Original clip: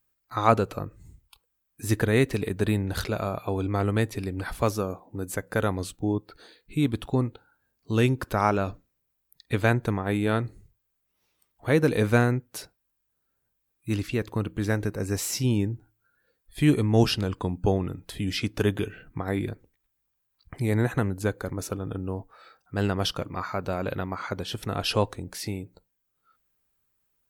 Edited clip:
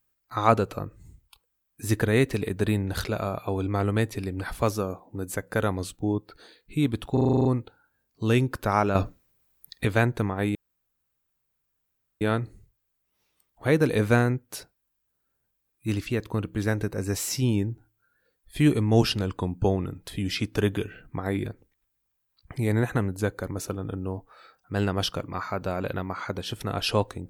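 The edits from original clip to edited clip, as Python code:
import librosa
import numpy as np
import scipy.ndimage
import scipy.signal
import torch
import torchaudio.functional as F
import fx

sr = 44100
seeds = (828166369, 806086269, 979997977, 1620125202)

y = fx.edit(x, sr, fx.stutter(start_s=7.13, slice_s=0.04, count=9),
    fx.clip_gain(start_s=8.63, length_s=0.9, db=8.5),
    fx.insert_room_tone(at_s=10.23, length_s=1.66), tone=tone)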